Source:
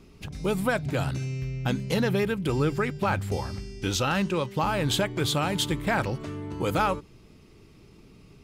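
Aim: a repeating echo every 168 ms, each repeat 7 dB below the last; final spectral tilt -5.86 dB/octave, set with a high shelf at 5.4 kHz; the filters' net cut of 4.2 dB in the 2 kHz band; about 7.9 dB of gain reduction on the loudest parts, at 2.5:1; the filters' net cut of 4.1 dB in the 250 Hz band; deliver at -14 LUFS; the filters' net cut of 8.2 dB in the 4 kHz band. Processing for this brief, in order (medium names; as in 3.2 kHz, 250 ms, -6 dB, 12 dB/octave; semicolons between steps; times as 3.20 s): peaking EQ 250 Hz -6 dB; peaking EQ 2 kHz -3.5 dB; peaking EQ 4 kHz -7.5 dB; treble shelf 5.4 kHz -4.5 dB; compression 2.5:1, threshold -35 dBFS; feedback delay 168 ms, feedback 45%, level -7 dB; trim +21.5 dB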